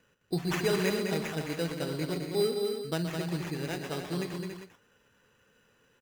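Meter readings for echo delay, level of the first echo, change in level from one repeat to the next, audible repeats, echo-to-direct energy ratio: 0.123 s, -10.0 dB, no steady repeat, 4, -2.5 dB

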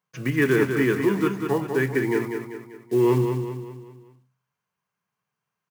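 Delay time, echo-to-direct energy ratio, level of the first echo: 0.195 s, -5.5 dB, -6.5 dB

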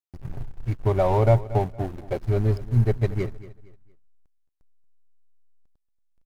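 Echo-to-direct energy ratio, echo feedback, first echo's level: -16.5 dB, 31%, -17.0 dB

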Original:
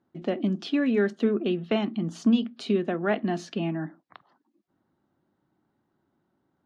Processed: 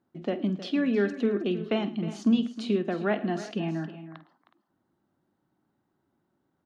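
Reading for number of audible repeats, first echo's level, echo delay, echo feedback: 4, -15.0 dB, 49 ms, no steady repeat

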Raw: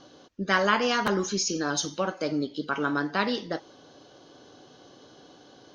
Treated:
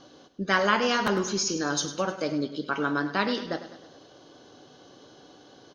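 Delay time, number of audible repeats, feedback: 0.103 s, 4, 53%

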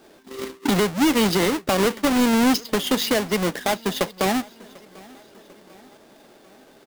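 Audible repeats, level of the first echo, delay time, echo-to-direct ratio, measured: 3, -23.5 dB, 0.745 s, -22.0 dB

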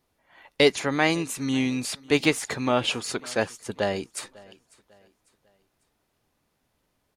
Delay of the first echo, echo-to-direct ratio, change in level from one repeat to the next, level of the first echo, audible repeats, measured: 0.548 s, -23.0 dB, -8.0 dB, -23.5 dB, 2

